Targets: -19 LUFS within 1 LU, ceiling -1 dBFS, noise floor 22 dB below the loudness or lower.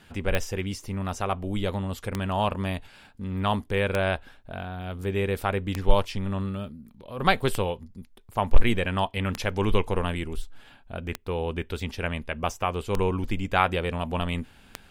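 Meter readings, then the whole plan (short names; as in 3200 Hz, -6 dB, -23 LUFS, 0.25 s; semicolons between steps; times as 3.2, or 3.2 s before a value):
clicks 9; loudness -28.5 LUFS; peak -5.5 dBFS; loudness target -19.0 LUFS
-> de-click; gain +9.5 dB; limiter -1 dBFS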